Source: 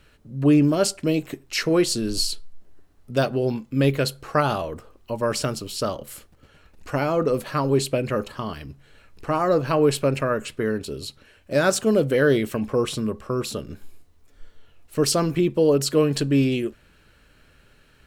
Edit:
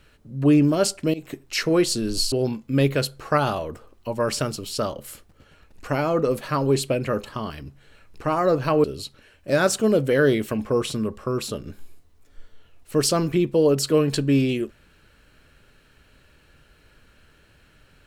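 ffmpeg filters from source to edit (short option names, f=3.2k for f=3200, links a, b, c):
-filter_complex "[0:a]asplit=4[a][b][c][d];[a]atrim=end=1.14,asetpts=PTS-STARTPTS,afade=t=out:st=1.136:d=0.004:c=hsin:silence=0.112202[e];[b]atrim=start=1.14:end=2.322,asetpts=PTS-STARTPTS,afade=t=in:d=0.29:c=qsin:silence=0.112202[f];[c]atrim=start=3.348:end=9.872[g];[d]atrim=start=10.868[h];[e][f]concat=n=2:v=0:a=1[i];[i][g]acrossfade=d=0.004:c1=hsin:c2=hsin[j];[j][h]acrossfade=d=0.004:c1=hsin:c2=hsin"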